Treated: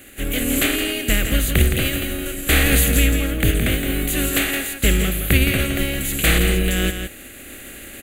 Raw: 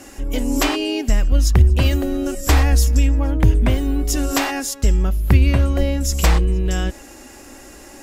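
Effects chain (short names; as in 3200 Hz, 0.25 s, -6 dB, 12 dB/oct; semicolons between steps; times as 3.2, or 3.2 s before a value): spectral contrast lowered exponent 0.5; AGC gain up to 6.5 dB; fixed phaser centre 2300 Hz, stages 4; on a send: echo 0.167 s -7.5 dB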